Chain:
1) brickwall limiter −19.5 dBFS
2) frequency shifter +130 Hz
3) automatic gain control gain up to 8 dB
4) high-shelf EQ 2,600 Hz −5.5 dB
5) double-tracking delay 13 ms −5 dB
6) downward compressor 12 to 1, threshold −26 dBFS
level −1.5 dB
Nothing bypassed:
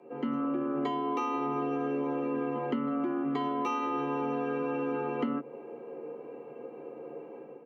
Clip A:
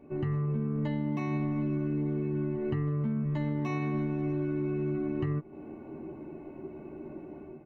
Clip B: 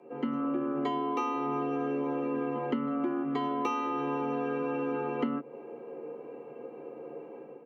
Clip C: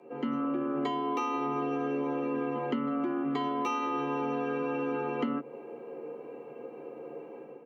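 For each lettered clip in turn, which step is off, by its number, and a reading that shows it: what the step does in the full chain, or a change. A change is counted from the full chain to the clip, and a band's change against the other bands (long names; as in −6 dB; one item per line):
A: 2, 125 Hz band +18.5 dB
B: 1, change in crest factor +2.5 dB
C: 4, 4 kHz band +3.0 dB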